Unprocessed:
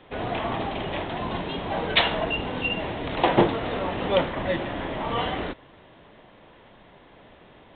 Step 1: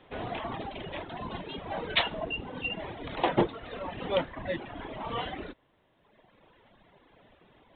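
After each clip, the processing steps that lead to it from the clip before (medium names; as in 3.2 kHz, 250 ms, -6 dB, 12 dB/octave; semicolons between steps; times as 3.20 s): reverb removal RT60 1.6 s; trim -5.5 dB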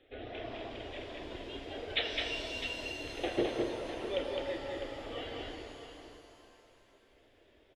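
static phaser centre 410 Hz, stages 4; multi-tap echo 210/654 ms -3/-11 dB; pitch-shifted reverb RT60 2.7 s, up +7 st, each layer -8 dB, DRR 3.5 dB; trim -5 dB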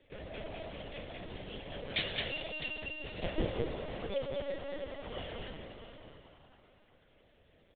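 LPC vocoder at 8 kHz pitch kept; trim -1 dB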